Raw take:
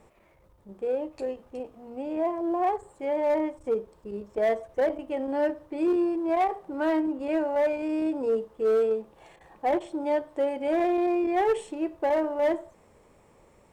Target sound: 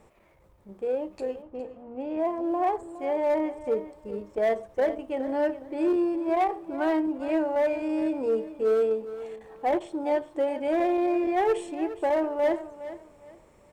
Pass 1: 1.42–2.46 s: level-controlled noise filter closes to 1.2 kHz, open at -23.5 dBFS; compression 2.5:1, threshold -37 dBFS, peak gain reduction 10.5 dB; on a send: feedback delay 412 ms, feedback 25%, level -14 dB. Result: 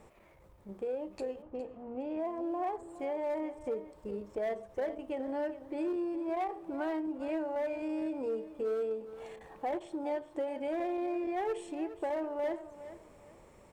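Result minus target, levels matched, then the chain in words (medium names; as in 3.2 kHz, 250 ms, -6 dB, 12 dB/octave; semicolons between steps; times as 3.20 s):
compression: peak gain reduction +10.5 dB
1.42–2.46 s: level-controlled noise filter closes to 1.2 kHz, open at -23.5 dBFS; on a send: feedback delay 412 ms, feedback 25%, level -14 dB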